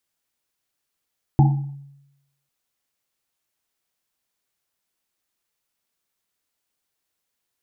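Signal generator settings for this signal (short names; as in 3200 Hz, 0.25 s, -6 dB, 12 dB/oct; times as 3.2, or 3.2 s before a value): Risset drum, pitch 140 Hz, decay 0.90 s, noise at 810 Hz, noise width 130 Hz, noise 15%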